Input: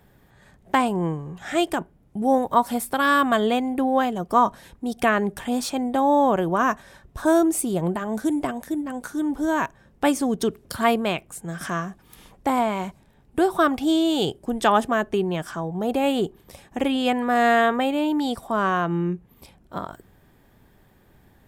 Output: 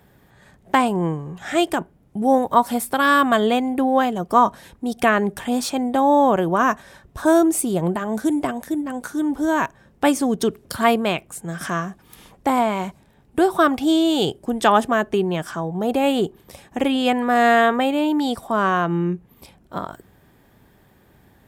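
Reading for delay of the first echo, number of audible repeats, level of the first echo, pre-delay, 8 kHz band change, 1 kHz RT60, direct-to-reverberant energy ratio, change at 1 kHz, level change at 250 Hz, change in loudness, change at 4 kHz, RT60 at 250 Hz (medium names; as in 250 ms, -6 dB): no echo, no echo, no echo, no reverb, +3.0 dB, no reverb, no reverb, +3.0 dB, +3.0 dB, +3.0 dB, +3.0 dB, no reverb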